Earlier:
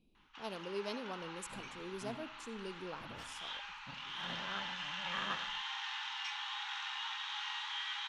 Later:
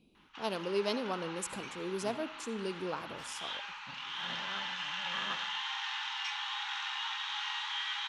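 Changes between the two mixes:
speech +8.5 dB; first sound +4.0 dB; master: add HPF 120 Hz 6 dB/oct

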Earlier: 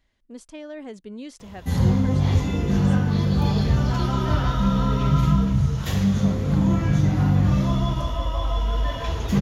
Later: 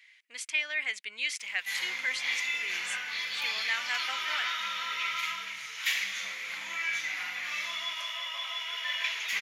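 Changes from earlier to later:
speech +10.0 dB; first sound: add bell 70 Hz -9.5 dB 1.9 oct; master: add resonant high-pass 2200 Hz, resonance Q 5.3

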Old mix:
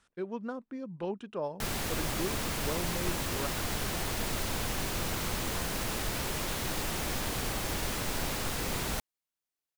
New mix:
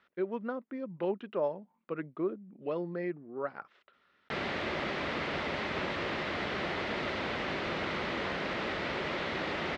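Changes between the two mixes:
background: entry +2.70 s; master: add speaker cabinet 120–3800 Hz, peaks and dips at 120 Hz -8 dB, 370 Hz +4 dB, 580 Hz +5 dB, 1300 Hz +3 dB, 2000 Hz +6 dB

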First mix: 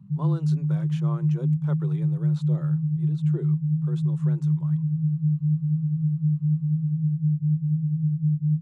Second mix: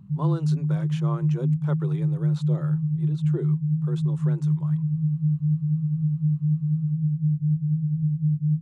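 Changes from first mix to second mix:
speech +4.0 dB; background: remove Butterworth band-pass 170 Hz, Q 0.94

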